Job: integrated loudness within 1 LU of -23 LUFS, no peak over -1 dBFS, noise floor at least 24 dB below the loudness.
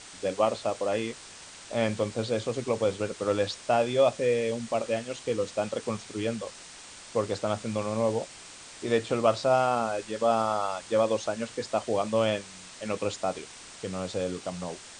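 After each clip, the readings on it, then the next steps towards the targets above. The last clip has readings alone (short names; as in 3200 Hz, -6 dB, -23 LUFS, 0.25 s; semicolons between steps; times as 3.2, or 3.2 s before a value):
noise floor -47 dBFS; noise floor target -53 dBFS; loudness -29.0 LUFS; peak -9.5 dBFS; loudness target -23.0 LUFS
-> noise print and reduce 6 dB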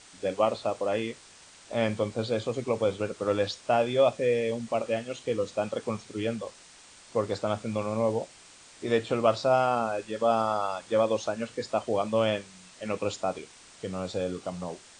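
noise floor -53 dBFS; loudness -29.0 LUFS; peak -10.0 dBFS; loudness target -23.0 LUFS
-> gain +6 dB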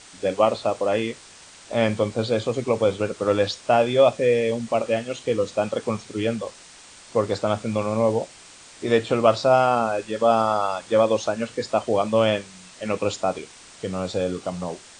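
loudness -23.0 LUFS; peak -3.5 dBFS; noise floor -47 dBFS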